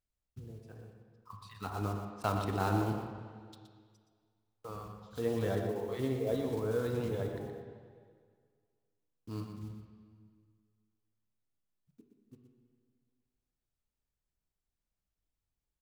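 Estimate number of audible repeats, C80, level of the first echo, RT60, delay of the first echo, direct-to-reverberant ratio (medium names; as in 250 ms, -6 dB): 1, 4.0 dB, -8.0 dB, 1.9 s, 121 ms, 2.0 dB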